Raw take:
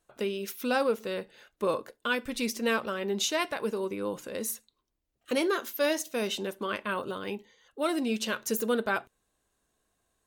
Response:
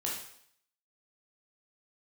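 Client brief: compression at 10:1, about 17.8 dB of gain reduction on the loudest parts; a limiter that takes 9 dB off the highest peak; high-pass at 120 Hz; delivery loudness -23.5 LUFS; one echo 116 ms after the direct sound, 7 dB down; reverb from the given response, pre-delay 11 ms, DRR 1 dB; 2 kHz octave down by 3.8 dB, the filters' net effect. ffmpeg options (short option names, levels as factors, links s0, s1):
-filter_complex "[0:a]highpass=120,equalizer=f=2000:t=o:g=-5.5,acompressor=threshold=0.00794:ratio=10,alimiter=level_in=4.47:limit=0.0631:level=0:latency=1,volume=0.224,aecho=1:1:116:0.447,asplit=2[s0][s1];[1:a]atrim=start_sample=2205,adelay=11[s2];[s1][s2]afir=irnorm=-1:irlink=0,volume=0.596[s3];[s0][s3]amix=inputs=2:normalize=0,volume=10.6"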